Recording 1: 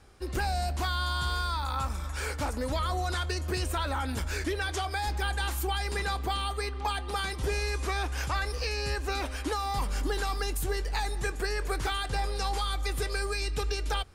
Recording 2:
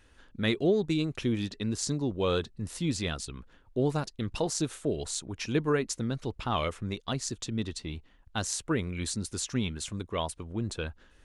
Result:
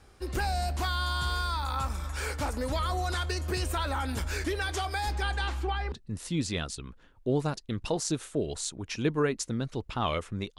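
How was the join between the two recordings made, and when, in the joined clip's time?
recording 1
5.14–5.92 LPF 9700 Hz -> 1700 Hz
5.92 switch to recording 2 from 2.42 s

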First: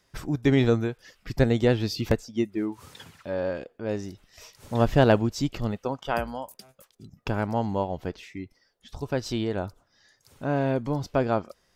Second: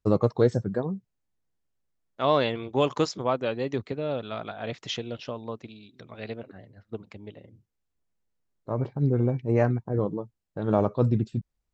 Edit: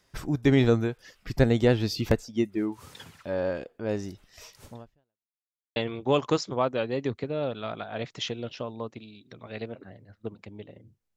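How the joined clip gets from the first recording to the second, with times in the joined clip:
first
4.65–5.31 fade out exponential
5.31–5.76 mute
5.76 switch to second from 2.44 s

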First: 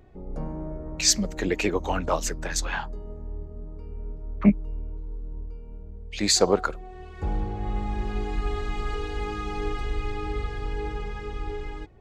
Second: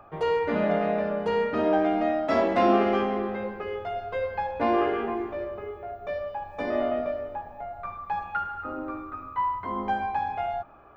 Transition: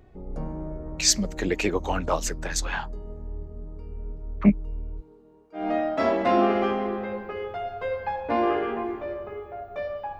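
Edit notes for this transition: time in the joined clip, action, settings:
first
5–5.7 HPF 200 Hz -> 740 Hz
5.61 switch to second from 1.92 s, crossfade 0.18 s

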